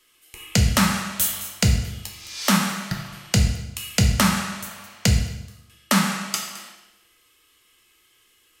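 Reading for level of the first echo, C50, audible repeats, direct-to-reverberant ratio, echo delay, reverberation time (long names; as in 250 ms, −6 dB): no echo audible, 6.0 dB, no echo audible, 2.0 dB, no echo audible, 0.95 s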